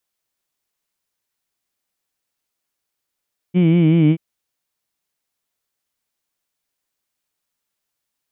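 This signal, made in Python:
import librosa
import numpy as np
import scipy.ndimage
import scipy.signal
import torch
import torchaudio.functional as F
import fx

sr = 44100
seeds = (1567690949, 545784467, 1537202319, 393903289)

y = fx.vowel(sr, seeds[0], length_s=0.63, word='heed', hz=174.0, glide_st=-2.0, vibrato_hz=5.3, vibrato_st=0.9)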